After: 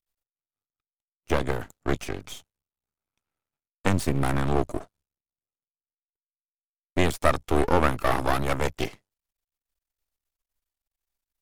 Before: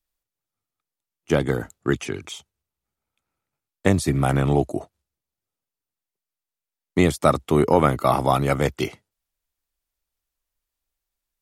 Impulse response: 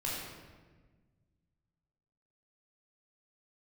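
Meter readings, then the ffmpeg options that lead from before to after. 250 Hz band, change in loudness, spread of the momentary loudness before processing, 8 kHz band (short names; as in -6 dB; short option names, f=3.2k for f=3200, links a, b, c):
-6.0 dB, -5.0 dB, 12 LU, -4.0 dB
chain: -af "aeval=exprs='max(val(0),0)':c=same"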